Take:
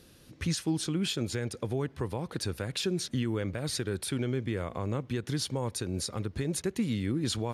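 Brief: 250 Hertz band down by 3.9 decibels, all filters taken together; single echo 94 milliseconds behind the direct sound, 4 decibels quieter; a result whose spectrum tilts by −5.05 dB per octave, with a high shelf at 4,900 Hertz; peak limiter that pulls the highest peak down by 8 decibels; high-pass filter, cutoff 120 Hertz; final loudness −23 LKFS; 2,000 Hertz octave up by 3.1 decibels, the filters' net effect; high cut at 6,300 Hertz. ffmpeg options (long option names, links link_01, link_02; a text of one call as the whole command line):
ffmpeg -i in.wav -af "highpass=120,lowpass=6300,equalizer=frequency=250:width_type=o:gain=-5,equalizer=frequency=2000:width_type=o:gain=5.5,highshelf=frequency=4900:gain=-8.5,alimiter=level_in=4dB:limit=-24dB:level=0:latency=1,volume=-4dB,aecho=1:1:94:0.631,volume=14dB" out.wav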